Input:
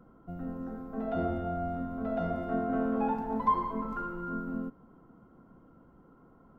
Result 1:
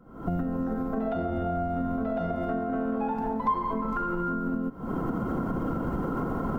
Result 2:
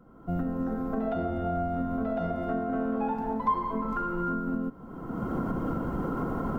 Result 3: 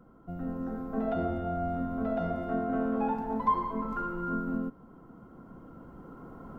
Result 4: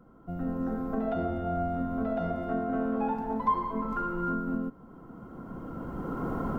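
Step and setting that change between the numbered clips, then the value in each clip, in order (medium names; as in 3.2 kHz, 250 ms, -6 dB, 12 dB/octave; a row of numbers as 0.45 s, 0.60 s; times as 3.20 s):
recorder AGC, rising by: 89 dB/s, 35 dB/s, 5.5 dB/s, 14 dB/s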